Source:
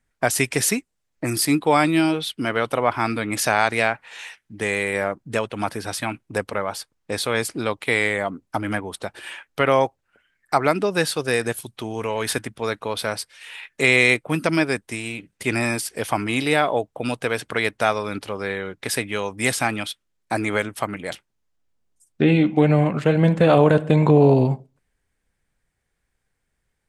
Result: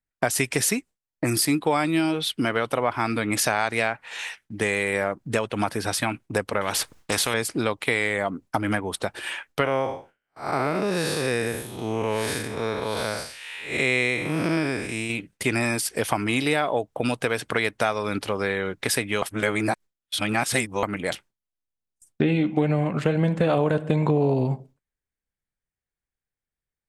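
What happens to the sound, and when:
0:06.61–0:07.34: every bin compressed towards the loudest bin 2 to 1
0:09.64–0:15.10: spectrum smeared in time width 198 ms
0:19.22–0:20.83: reverse
whole clip: noise gate with hold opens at −44 dBFS; downward compressor 3 to 1, threshold −25 dBFS; level +4 dB

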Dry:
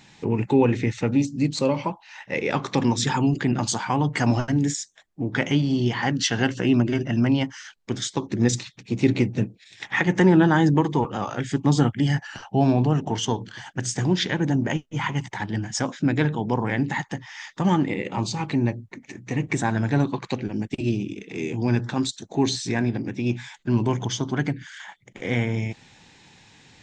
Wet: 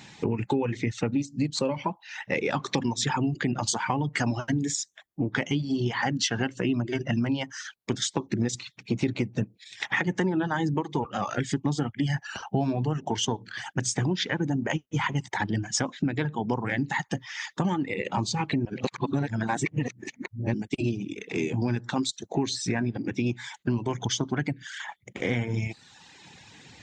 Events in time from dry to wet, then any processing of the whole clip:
0:18.65–0:20.54: reverse
whole clip: high-pass filter 52 Hz; reverb reduction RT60 0.93 s; downward compressor 6 to 1, threshold −28 dBFS; level +4.5 dB

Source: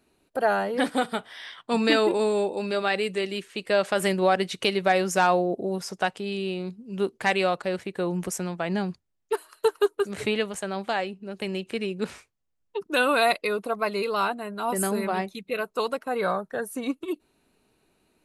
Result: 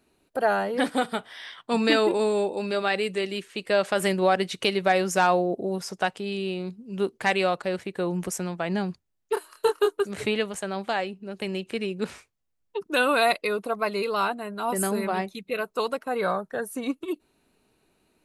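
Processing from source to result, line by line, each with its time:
0:09.34–0:10.01: double-tracking delay 26 ms −4 dB

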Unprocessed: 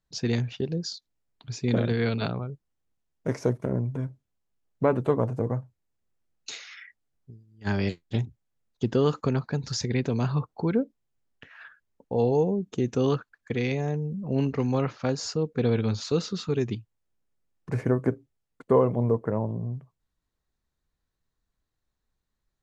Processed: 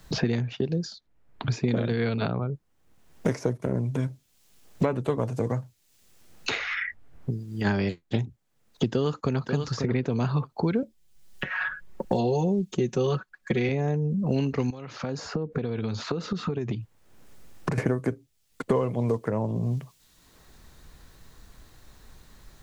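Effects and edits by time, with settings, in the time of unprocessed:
0:08.90–0:09.48: delay throw 540 ms, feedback 15%, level −12 dB
0:10.82–0:13.69: comb filter 5.4 ms, depth 89%
0:14.70–0:17.78: downward compressor 10 to 1, threshold −39 dBFS
whole clip: multiband upward and downward compressor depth 100%

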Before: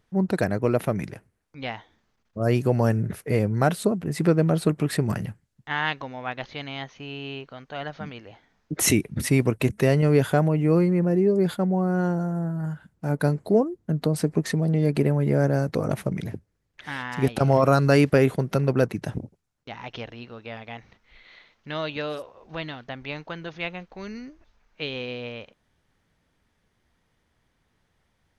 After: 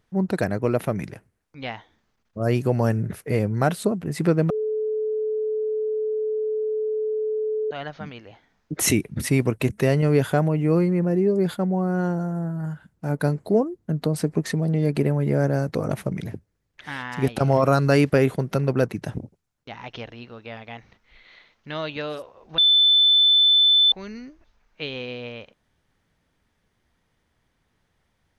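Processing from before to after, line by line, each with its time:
0:04.50–0:07.71: beep over 432 Hz −22 dBFS
0:22.58–0:23.92: beep over 3,520 Hz −13 dBFS

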